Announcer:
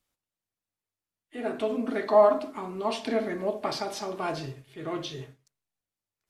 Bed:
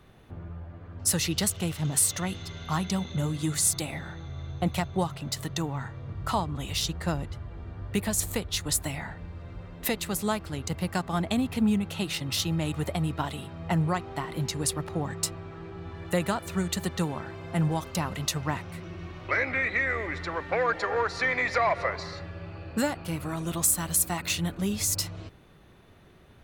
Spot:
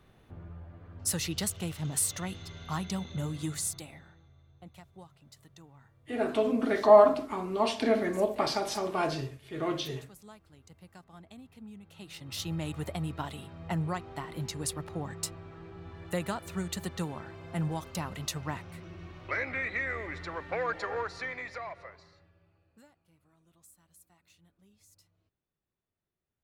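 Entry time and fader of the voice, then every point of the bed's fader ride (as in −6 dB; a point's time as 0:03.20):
4.75 s, +1.5 dB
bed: 0:03.45 −5.5 dB
0:04.44 −23.5 dB
0:11.73 −23.5 dB
0:12.51 −6 dB
0:20.92 −6 dB
0:23.05 −35.5 dB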